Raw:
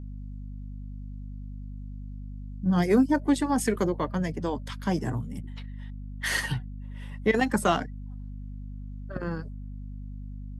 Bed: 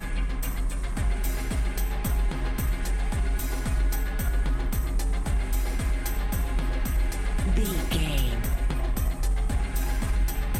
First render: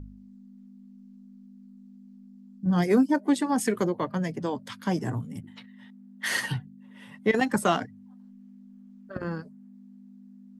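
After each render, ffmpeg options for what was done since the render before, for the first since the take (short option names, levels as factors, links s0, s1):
-af "bandreject=f=50:t=h:w=4,bandreject=f=100:t=h:w=4,bandreject=f=150:t=h:w=4"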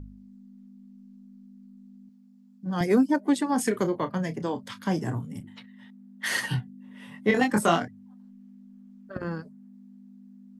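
-filter_complex "[0:a]asettb=1/sr,asplit=3[s0][s1][s2];[s0]atrim=end=2.094[s3];[s1]atrim=start=2.09:end=2.81,asetpts=PTS-STARTPTS,afade=t=in:d=0.004:c=qsin,afade=t=out:st=0.716:d=0.004:c=qsin,highpass=f=370:p=1[s4];[s2]atrim=start=2.806[s5];[s3][s4]acrossfade=d=0.004:c1=hsin:c2=qsin[s6];[s6][s5]acrossfade=d=0.004:c1=qsin:c2=hsin,asettb=1/sr,asplit=3[s7][s8][s9];[s7]atrim=end=3.504[s10];[s8]atrim=start=3.5:end=5.56,asetpts=PTS-STARTPTS,afade=t=in:d=0.004:c=qsin,afade=t=out:st=2.056:d=0.004:c=qsin,asplit=2[s11][s12];[s12]adelay=31,volume=0.266[s13];[s11][s13]amix=inputs=2:normalize=0,atrim=end_sample=90846[s14];[s9]atrim=start=5.556[s15];[s10][s14]acrossfade=d=0.004:c1=hsin:c2=qsin[s16];[s16][s15]acrossfade=d=0.004:c1=qsin:c2=hsin,asettb=1/sr,asplit=3[s17][s18][s19];[s17]atrim=end=6.494[s20];[s18]atrim=start=6.49:end=7.88,asetpts=PTS-STARTPTS,afade=t=in:d=0.004:c=qsin,afade=t=out:st=1.386:d=0.004:c=qsin,asplit=2[s21][s22];[s22]adelay=24,volume=0.668[s23];[s21][s23]amix=inputs=2:normalize=0,atrim=end_sample=61299[s24];[s19]atrim=start=7.876[s25];[s20][s24]acrossfade=d=0.004:c1=hsin:c2=qsin[s26];[s26][s25]acrossfade=d=0.004:c1=qsin:c2=hsin"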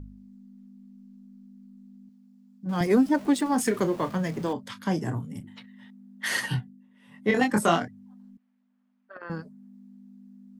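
-filter_complex "[0:a]asettb=1/sr,asplit=3[s0][s1][s2];[s0]atrim=end=2.694[s3];[s1]atrim=start=2.69:end=4.53,asetpts=PTS-STARTPTS,afade=t=in:d=0.004:c=qsin,afade=t=out:st=1.836:d=0.004:c=qsin,aeval=exprs='val(0)+0.5*0.0112*sgn(val(0))':c=same[s4];[s2]atrim=start=4.526[s5];[s3][s4]acrossfade=d=0.004:c1=hsin:c2=qsin[s6];[s6][s5]acrossfade=d=0.004:c1=qsin:c2=hsin,asettb=1/sr,asplit=3[s7][s8][s9];[s7]atrim=end=8.374[s10];[s8]atrim=start=8.37:end=9.3,asetpts=PTS-STARTPTS,afade=t=in:d=0.004:c=qsin,afade=t=out:st=0.926:d=0.004:c=qsin,highpass=760,lowpass=2700[s11];[s9]atrim=start=9.296[s12];[s10][s11]acrossfade=d=0.004:c1=hsin:c2=qsin[s13];[s13][s12]acrossfade=d=0.004:c1=qsin:c2=hsin,asplit=3[s14][s15][s16];[s14]atrim=end=6.88,asetpts=PTS-STARTPTS,afade=t=out:st=6.56:d=0.32:silence=0.223872[s17];[s15]atrim=start=6.88:end=7.03,asetpts=PTS-STARTPTS,volume=0.224[s18];[s16]atrim=start=7.03,asetpts=PTS-STARTPTS,afade=t=in:d=0.32:silence=0.223872[s19];[s17][s18][s19]concat=n=3:v=0:a=1"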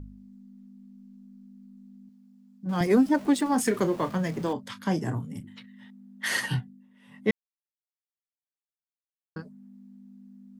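-filter_complex "[0:a]asettb=1/sr,asplit=3[s0][s1][s2];[s0]atrim=end=5.384[s3];[s1]atrim=start=5.38:end=5.81,asetpts=PTS-STARTPTS,afade=t=in:d=0.004:c=qsin,afade=t=out:st=0.426:d=0.004:c=qsin,equalizer=f=770:w=1.8:g=-8.5[s4];[s2]atrim=start=5.806[s5];[s3][s4]acrossfade=d=0.004:c1=hsin:c2=qsin[s6];[s6][s5]acrossfade=d=0.004:c1=qsin:c2=hsin,asplit=3[s7][s8][s9];[s7]atrim=end=7.31,asetpts=PTS-STARTPTS,afade=t=out:st=7.306:d=0.004:c=hsin[s10];[s8]atrim=start=7.31:end=9.36,asetpts=PTS-STARTPTS,volume=0[s11];[s9]atrim=start=9.36,asetpts=PTS-STARTPTS,afade=t=in:d=0.004:c=hsin[s12];[s10][s11][s12]concat=n=3:v=0:a=1"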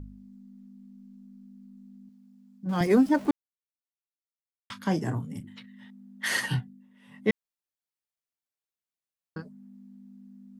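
-filter_complex "[0:a]asplit=3[s0][s1][s2];[s0]atrim=end=3.31,asetpts=PTS-STARTPTS,afade=t=out:st=3.306:d=0.004:c=hsin[s3];[s1]atrim=start=3.31:end=4.7,asetpts=PTS-STARTPTS,volume=0[s4];[s2]atrim=start=4.7,asetpts=PTS-STARTPTS,afade=t=in:d=0.004:c=hsin[s5];[s3][s4][s5]concat=n=3:v=0:a=1"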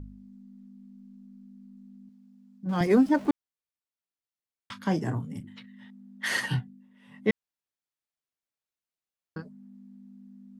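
-af "highshelf=f=7700:g=-6.5"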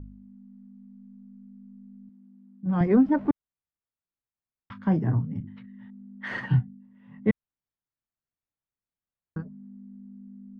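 -af "lowpass=1600,asubboost=boost=2.5:cutoff=240"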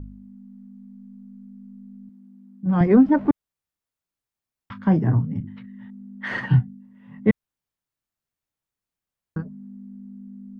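-af "volume=1.78"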